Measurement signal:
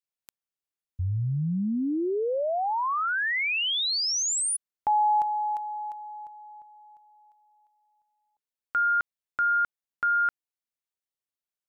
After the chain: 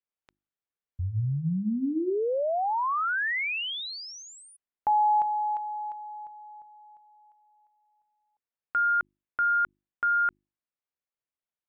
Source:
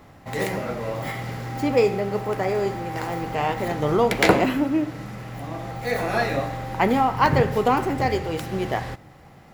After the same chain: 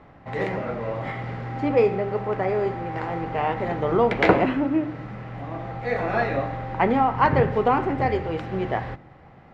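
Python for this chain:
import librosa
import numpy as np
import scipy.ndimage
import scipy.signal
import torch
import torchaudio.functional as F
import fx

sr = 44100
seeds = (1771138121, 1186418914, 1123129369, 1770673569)

y = scipy.signal.sosfilt(scipy.signal.butter(2, 2400.0, 'lowpass', fs=sr, output='sos'), x)
y = fx.hum_notches(y, sr, base_hz=50, count=7)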